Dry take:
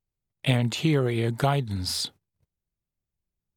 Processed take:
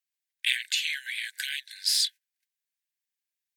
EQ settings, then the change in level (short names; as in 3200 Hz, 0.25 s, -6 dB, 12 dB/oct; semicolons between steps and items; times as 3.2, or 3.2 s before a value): brick-wall FIR high-pass 1500 Hz; +5.0 dB